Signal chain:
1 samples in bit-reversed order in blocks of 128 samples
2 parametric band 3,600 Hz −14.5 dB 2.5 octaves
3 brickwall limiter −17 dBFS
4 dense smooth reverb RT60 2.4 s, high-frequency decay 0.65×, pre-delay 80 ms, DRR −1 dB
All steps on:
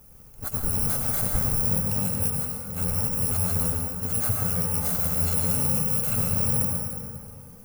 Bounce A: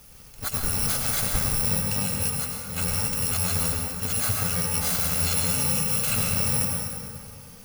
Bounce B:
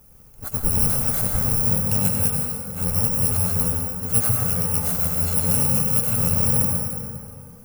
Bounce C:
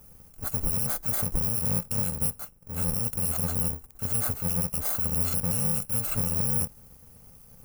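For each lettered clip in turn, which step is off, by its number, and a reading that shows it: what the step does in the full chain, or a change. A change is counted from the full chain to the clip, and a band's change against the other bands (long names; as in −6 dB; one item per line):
2, 4 kHz band +9.5 dB
3, average gain reduction 2.0 dB
4, change in crest factor −3.5 dB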